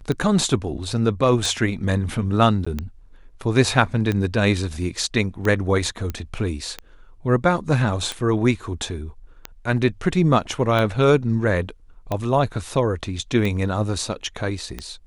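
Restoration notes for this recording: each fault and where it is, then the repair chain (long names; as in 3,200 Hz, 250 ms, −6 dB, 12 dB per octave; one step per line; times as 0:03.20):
scratch tick 45 rpm −12 dBFS
0:02.65–0:02.67: drop-out 15 ms
0:06.10: click −14 dBFS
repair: click removal
repair the gap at 0:02.65, 15 ms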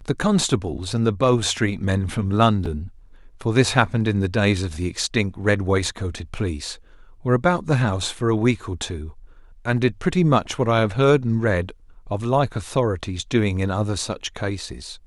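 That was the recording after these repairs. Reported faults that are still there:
none of them is left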